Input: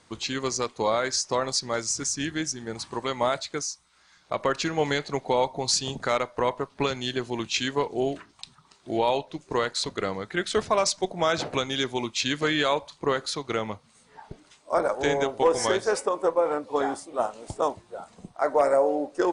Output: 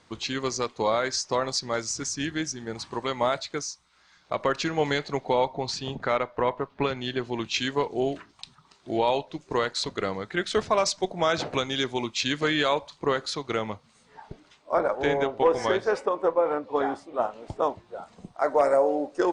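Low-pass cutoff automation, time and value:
5.11 s 6.2 kHz
5.80 s 3 kHz
6.96 s 3 kHz
7.74 s 6.9 kHz
14.25 s 6.9 kHz
14.78 s 3.4 kHz
17.58 s 3.4 kHz
18.36 s 7.6 kHz

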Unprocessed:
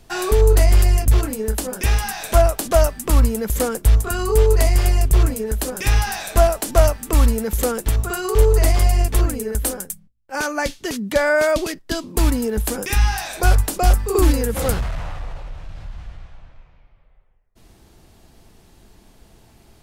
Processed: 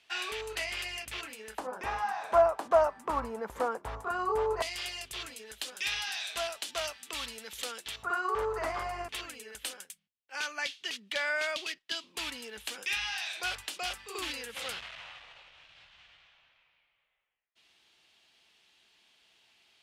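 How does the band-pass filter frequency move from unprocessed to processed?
band-pass filter, Q 2.2
2.7 kHz
from 1.58 s 970 Hz
from 4.62 s 3.3 kHz
from 8.03 s 1.2 kHz
from 9.09 s 3 kHz

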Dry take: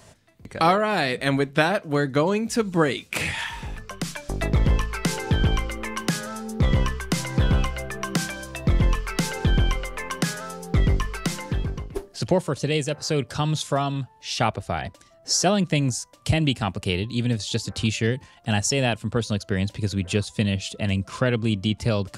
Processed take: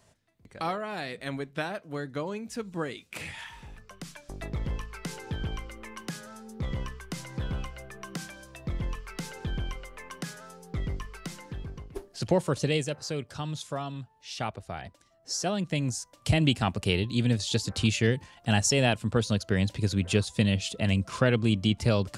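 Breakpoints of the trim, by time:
11.57 s -12.5 dB
12.57 s -1 dB
13.23 s -10.5 dB
15.32 s -10.5 dB
16.48 s -1.5 dB

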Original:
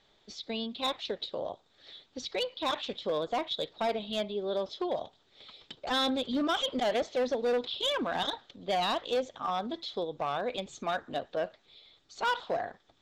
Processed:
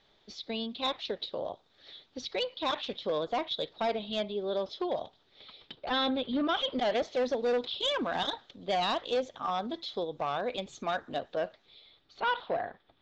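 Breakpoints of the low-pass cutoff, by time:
low-pass 24 dB/octave
5.04 s 6 kHz
6.31 s 3.6 kHz
7.17 s 7 kHz
11.39 s 7 kHz
12.21 s 3.8 kHz

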